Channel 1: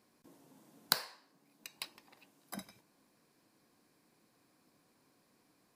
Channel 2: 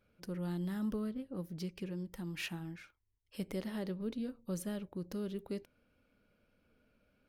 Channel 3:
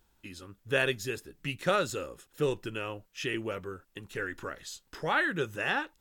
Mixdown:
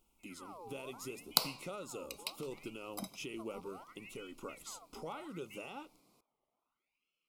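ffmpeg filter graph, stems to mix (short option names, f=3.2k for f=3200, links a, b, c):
-filter_complex "[0:a]adelay=450,volume=2dB[a];[1:a]aeval=exprs='val(0)*sin(2*PI*1700*n/s+1700*0.65/0.7*sin(2*PI*0.7*n/s))':c=same,volume=-10.5dB[b];[2:a]bandreject=f=50:t=h:w=6,bandreject=f=100:t=h:w=6,bandreject=f=150:t=h:w=6,acompressor=threshold=-34dB:ratio=2.5,volume=-5dB[c];[b][c]amix=inputs=2:normalize=0,equalizer=f=100:t=o:w=0.67:g=-8,equalizer=f=250:t=o:w=0.67:g=4,equalizer=f=4k:t=o:w=0.67:g=-5,equalizer=f=10k:t=o:w=0.67:g=6,alimiter=level_in=9dB:limit=-24dB:level=0:latency=1:release=188,volume=-9dB,volume=0dB[d];[a][d]amix=inputs=2:normalize=0,asuperstop=centerf=1700:order=4:qfactor=2,equalizer=f=88:w=4.8:g=-8"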